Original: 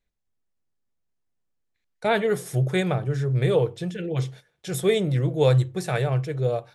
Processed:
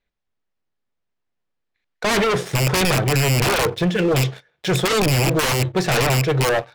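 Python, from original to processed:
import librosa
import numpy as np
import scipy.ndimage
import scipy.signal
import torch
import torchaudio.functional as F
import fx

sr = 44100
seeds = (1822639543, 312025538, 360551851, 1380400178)

p1 = fx.rattle_buzz(x, sr, strikes_db=-25.0, level_db=-12.0)
p2 = scipy.signal.sosfilt(scipy.signal.butter(2, 3900.0, 'lowpass', fs=sr, output='sos'), p1)
p3 = fx.low_shelf(p2, sr, hz=300.0, db=-7.5)
p4 = fx.leveller(p3, sr, passes=2)
p5 = fx.fold_sine(p4, sr, drive_db=13, ceiling_db=-8.5)
p6 = p4 + F.gain(torch.from_numpy(p5), -4.0).numpy()
y = F.gain(torch.from_numpy(p6), -4.5).numpy()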